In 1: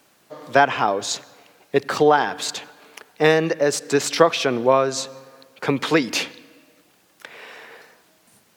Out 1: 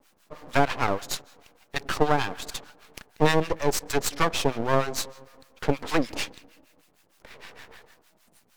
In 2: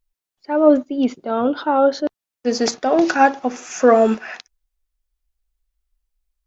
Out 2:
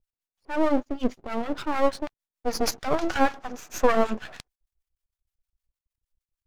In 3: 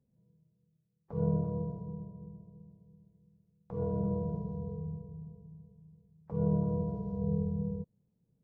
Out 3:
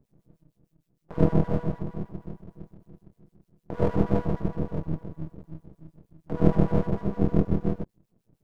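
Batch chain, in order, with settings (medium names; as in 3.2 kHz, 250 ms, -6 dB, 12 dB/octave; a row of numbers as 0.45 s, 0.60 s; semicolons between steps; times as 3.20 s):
harmonic tremolo 6.5 Hz, depth 100%, crossover 810 Hz; half-wave rectifier; normalise loudness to -27 LUFS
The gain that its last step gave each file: +3.0 dB, +1.0 dB, +17.0 dB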